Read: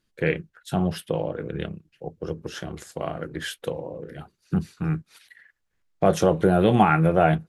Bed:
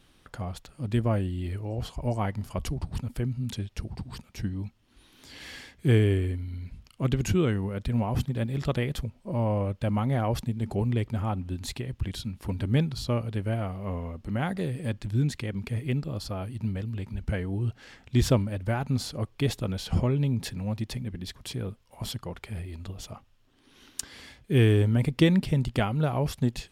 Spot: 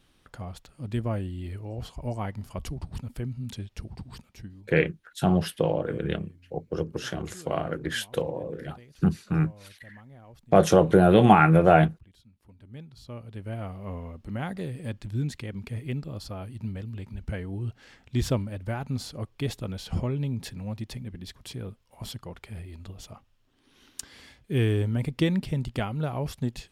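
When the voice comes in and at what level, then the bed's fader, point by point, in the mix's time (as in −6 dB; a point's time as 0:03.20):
4.50 s, +1.5 dB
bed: 0:04.25 −3.5 dB
0:04.81 −23.5 dB
0:12.55 −23.5 dB
0:13.66 −3.5 dB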